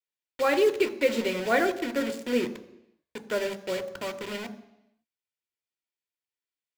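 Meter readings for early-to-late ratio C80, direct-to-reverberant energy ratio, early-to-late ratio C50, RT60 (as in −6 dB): 17.0 dB, 9.5 dB, 15.5 dB, 0.85 s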